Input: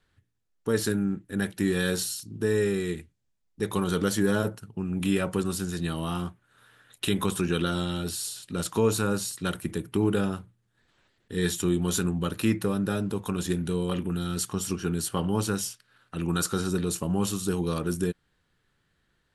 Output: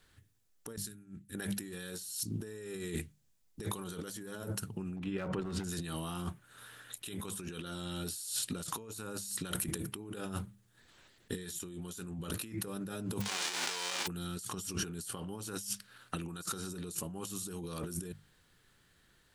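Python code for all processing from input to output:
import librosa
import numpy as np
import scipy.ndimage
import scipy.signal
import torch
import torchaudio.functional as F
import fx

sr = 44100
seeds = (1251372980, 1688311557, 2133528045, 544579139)

y = fx.chain(x, sr, fx.tone_stack(knobs='6-0-2'),
    fx.tube_stage(drive_db=18.0, bias=0.2),
    fx.over_compress(threshold_db=-51.0, ratio=-1.0), at=(0.76, 1.35))
y = fx.chain(y, sr, fx.lowpass(hz=2200.0, slope=12),
    fx.over_compress(threshold_db=-29.0, ratio=-0.5),
    fx.clip_hard(threshold_db=-23.0), at=(4.96, 5.64))
y = fx.envelope_flatten(y, sr, power=0.1, at=(13.2, 14.06), fade=0.02)
y = fx.highpass(y, sr, hz=410.0, slope=12, at=(13.2, 14.06), fade=0.02)
y = fx.air_absorb(y, sr, metres=120.0, at=(13.2, 14.06), fade=0.02)
y = fx.high_shelf(y, sr, hz=4900.0, db=10.0)
y = fx.hum_notches(y, sr, base_hz=50, count=4)
y = fx.over_compress(y, sr, threshold_db=-36.0, ratio=-1.0)
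y = y * librosa.db_to_amplitude(-4.5)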